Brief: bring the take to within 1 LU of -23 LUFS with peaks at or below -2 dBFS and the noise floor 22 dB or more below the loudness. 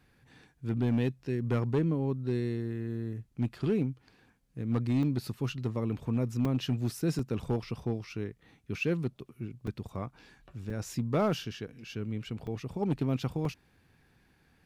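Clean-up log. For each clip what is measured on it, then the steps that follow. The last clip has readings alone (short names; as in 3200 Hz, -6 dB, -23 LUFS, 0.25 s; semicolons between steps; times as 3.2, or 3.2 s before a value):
clipped 0.8%; flat tops at -21.5 dBFS; dropouts 7; longest dropout 2.9 ms; loudness -33.0 LUFS; peak -21.5 dBFS; loudness target -23.0 LUFS
-> clip repair -21.5 dBFS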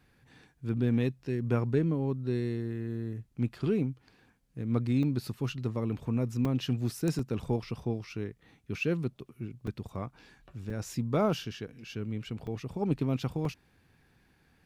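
clipped 0.0%; dropouts 7; longest dropout 2.9 ms
-> interpolate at 5.03/6.45/7.19/9.67/10.7/12.47/13.45, 2.9 ms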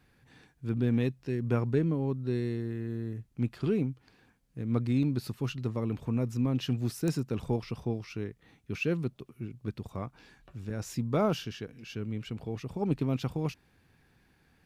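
dropouts 0; loudness -32.5 LUFS; peak -14.0 dBFS; loudness target -23.0 LUFS
-> gain +9.5 dB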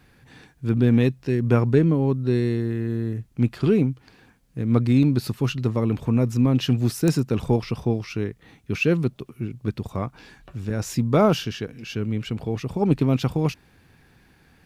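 loudness -23.0 LUFS; peak -4.5 dBFS; noise floor -57 dBFS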